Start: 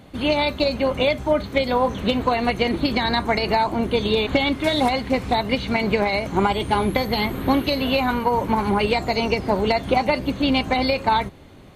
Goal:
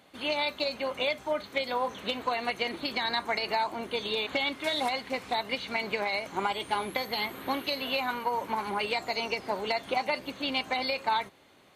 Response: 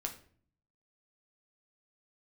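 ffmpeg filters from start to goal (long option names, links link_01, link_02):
-af "highpass=frequency=880:poles=1,volume=-5.5dB"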